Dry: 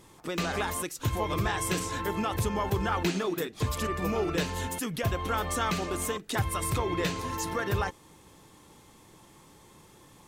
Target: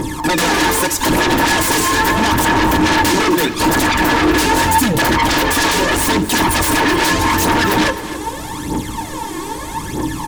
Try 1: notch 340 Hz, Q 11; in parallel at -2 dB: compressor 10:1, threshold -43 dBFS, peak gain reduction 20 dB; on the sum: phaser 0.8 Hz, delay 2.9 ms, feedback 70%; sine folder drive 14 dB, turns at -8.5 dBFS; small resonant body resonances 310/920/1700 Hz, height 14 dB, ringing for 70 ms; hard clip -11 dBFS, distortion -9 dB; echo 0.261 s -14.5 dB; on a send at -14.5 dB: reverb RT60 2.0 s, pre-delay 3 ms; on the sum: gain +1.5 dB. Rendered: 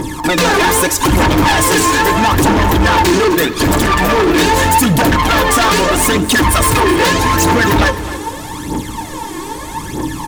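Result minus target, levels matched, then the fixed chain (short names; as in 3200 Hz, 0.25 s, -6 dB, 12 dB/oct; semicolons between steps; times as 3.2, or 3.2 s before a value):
sine folder: distortion -10 dB; compressor: peak gain reduction -6 dB
notch 340 Hz, Q 11; in parallel at -2 dB: compressor 10:1, threshold -49.5 dBFS, peak gain reduction 26 dB; on the sum: phaser 0.8 Hz, delay 2.9 ms, feedback 70%; sine folder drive 14 dB, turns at -15.5 dBFS; small resonant body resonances 310/920/1700 Hz, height 14 dB, ringing for 70 ms; hard clip -11 dBFS, distortion -19 dB; echo 0.261 s -14.5 dB; on a send at -14.5 dB: reverb RT60 2.0 s, pre-delay 3 ms; on the sum: gain +1.5 dB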